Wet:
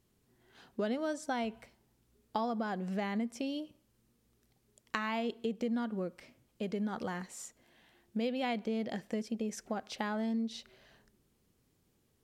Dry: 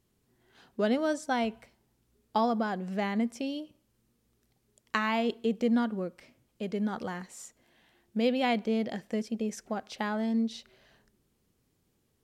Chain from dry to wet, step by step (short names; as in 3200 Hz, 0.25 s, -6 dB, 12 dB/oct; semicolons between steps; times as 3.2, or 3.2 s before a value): compressor 3:1, threshold -33 dBFS, peak gain reduction 9 dB